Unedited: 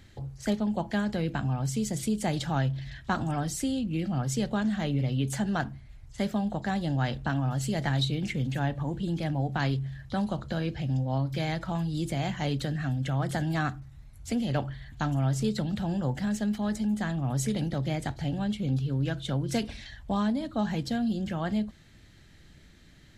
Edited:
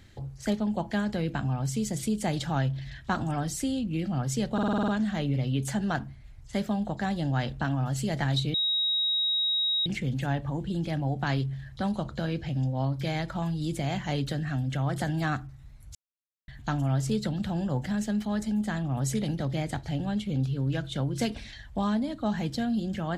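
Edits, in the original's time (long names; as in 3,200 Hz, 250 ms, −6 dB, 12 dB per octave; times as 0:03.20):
0:04.53: stutter 0.05 s, 8 plays
0:08.19: insert tone 3,800 Hz −23.5 dBFS 1.32 s
0:14.28–0:14.81: silence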